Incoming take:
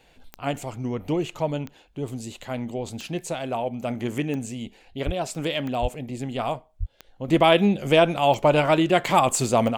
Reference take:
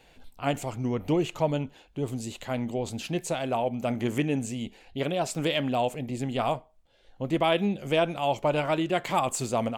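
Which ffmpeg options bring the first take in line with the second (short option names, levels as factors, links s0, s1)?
-filter_complex "[0:a]adeclick=t=4,asplit=3[s0][s1][s2];[s0]afade=t=out:st=5.05:d=0.02[s3];[s1]highpass=f=140:w=0.5412,highpass=f=140:w=1.3066,afade=t=in:st=5.05:d=0.02,afade=t=out:st=5.17:d=0.02[s4];[s2]afade=t=in:st=5.17:d=0.02[s5];[s3][s4][s5]amix=inputs=3:normalize=0,asplit=3[s6][s7][s8];[s6]afade=t=out:st=5.81:d=0.02[s9];[s7]highpass=f=140:w=0.5412,highpass=f=140:w=1.3066,afade=t=in:st=5.81:d=0.02,afade=t=out:st=5.93:d=0.02[s10];[s8]afade=t=in:st=5.93:d=0.02[s11];[s9][s10][s11]amix=inputs=3:normalize=0,asplit=3[s12][s13][s14];[s12]afade=t=out:st=6.79:d=0.02[s15];[s13]highpass=f=140:w=0.5412,highpass=f=140:w=1.3066,afade=t=in:st=6.79:d=0.02,afade=t=out:st=6.91:d=0.02[s16];[s14]afade=t=in:st=6.91:d=0.02[s17];[s15][s16][s17]amix=inputs=3:normalize=0,asetnsamples=n=441:p=0,asendcmd='7.28 volume volume -7dB',volume=1"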